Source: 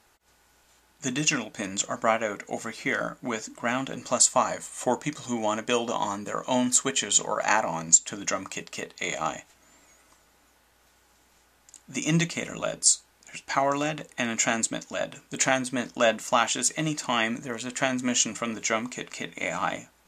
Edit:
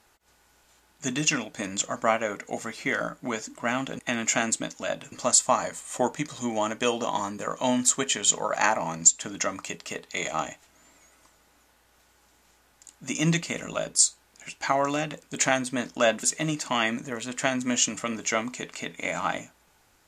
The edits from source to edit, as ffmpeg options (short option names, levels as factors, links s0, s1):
-filter_complex "[0:a]asplit=5[s0][s1][s2][s3][s4];[s0]atrim=end=3.992[s5];[s1]atrim=start=14.098:end=15.232[s6];[s2]atrim=start=3.988:end=14.102[s7];[s3]atrim=start=15.228:end=16.232[s8];[s4]atrim=start=16.608[s9];[s5][s6]acrossfade=d=0.004:c1=hsin:c2=hsin[s10];[s10][s7]acrossfade=d=0.004:c1=hsin:c2=hsin[s11];[s11][s8]acrossfade=d=0.004:c1=hsin:c2=hsin[s12];[s12][s9]acrossfade=d=0.004:c1=hsin:c2=hsin"